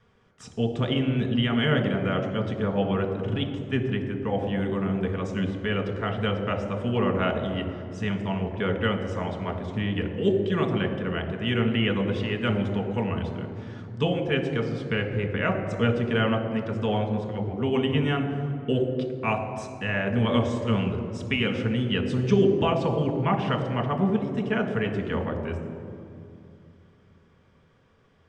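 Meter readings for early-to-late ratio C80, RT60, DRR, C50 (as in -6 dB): 8.5 dB, 2.5 s, 4.0 dB, 7.5 dB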